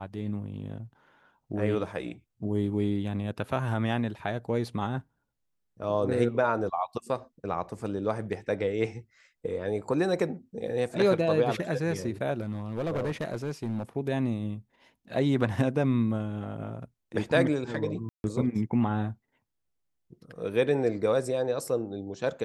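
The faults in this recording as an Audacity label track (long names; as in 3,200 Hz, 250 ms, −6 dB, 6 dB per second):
12.410000	13.830000	clipping −26 dBFS
18.090000	18.240000	drop-out 151 ms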